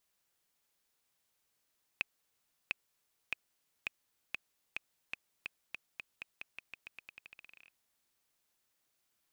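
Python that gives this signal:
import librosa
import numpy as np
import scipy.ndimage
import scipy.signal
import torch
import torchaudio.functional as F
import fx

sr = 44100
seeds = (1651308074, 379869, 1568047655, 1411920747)

y = fx.bouncing_ball(sr, first_gap_s=0.7, ratio=0.88, hz=2540.0, decay_ms=14.0, level_db=-16.5)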